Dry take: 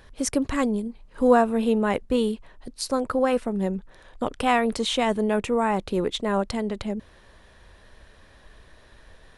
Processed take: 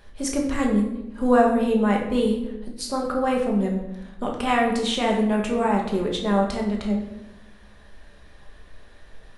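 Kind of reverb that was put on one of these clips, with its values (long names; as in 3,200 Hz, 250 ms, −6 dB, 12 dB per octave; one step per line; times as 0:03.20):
rectangular room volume 320 cubic metres, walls mixed, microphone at 1.3 metres
level −3 dB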